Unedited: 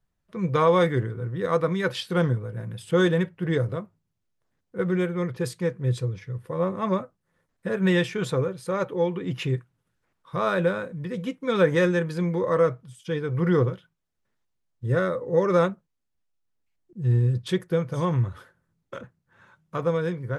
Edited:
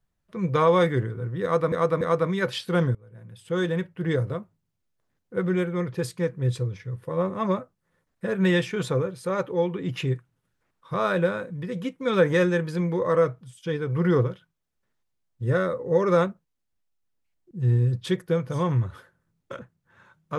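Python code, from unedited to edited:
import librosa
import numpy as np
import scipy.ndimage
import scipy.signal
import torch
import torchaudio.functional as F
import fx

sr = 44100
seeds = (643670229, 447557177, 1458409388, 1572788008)

y = fx.edit(x, sr, fx.repeat(start_s=1.43, length_s=0.29, count=3),
    fx.fade_in_from(start_s=2.37, length_s=1.26, floor_db=-22.5), tone=tone)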